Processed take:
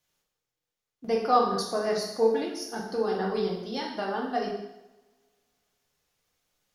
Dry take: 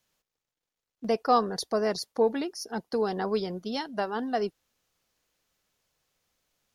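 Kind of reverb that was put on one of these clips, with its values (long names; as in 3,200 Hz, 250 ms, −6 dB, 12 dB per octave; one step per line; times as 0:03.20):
coupled-rooms reverb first 0.84 s, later 2.2 s, from −26 dB, DRR −3 dB
level −4.5 dB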